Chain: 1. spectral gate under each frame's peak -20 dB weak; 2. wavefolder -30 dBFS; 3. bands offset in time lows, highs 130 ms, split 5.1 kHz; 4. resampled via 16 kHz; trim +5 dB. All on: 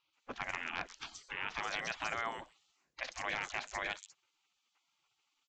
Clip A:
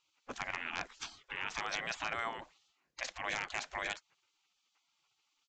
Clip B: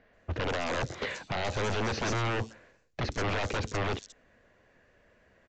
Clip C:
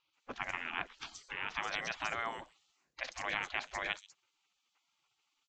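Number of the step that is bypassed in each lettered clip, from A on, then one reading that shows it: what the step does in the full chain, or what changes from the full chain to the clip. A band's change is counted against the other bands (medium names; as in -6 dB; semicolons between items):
3, 8 kHz band +2.0 dB; 1, 125 Hz band +17.5 dB; 2, distortion -11 dB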